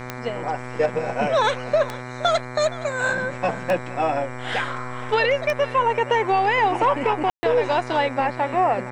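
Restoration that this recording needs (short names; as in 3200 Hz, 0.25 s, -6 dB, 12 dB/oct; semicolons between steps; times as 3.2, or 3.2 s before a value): de-click; de-hum 125 Hz, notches 19; room tone fill 7.3–7.43; inverse comb 0.468 s -17.5 dB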